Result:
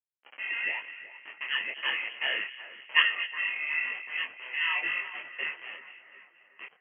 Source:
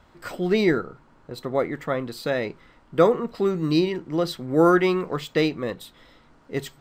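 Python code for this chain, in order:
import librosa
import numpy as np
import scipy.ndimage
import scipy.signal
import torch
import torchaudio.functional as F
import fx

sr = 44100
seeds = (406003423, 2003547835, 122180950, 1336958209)

p1 = fx.doppler_pass(x, sr, speed_mps=10, closest_m=6.7, pass_at_s=2.14)
p2 = fx.level_steps(p1, sr, step_db=18)
p3 = p1 + (p2 * 10.0 ** (2.0 / 20.0))
p4 = p3 * np.sin(2.0 * np.pi * 780.0 * np.arange(len(p3)) / sr)
p5 = fx.rider(p4, sr, range_db=4, speed_s=2.0)
p6 = fx.quant_dither(p5, sr, seeds[0], bits=6, dither='none')
p7 = fx.freq_invert(p6, sr, carrier_hz=3100)
p8 = scipy.signal.sosfilt(scipy.signal.butter(2, 400.0, 'highpass', fs=sr, output='sos'), p7)
p9 = p8 + fx.echo_split(p8, sr, split_hz=2000.0, low_ms=370, high_ms=239, feedback_pct=52, wet_db=-13.5, dry=0)
y = fx.detune_double(p9, sr, cents=34)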